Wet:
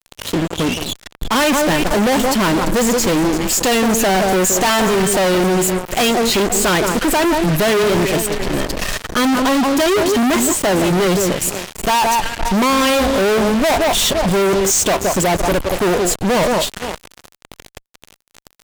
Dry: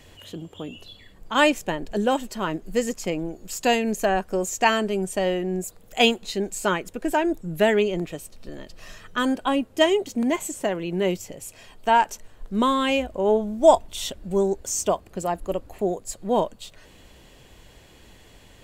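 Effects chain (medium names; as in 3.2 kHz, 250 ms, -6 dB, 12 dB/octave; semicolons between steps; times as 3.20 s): echo whose repeats swap between lows and highs 170 ms, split 1.5 kHz, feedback 53%, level -12 dB; fuzz box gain 43 dB, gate -41 dBFS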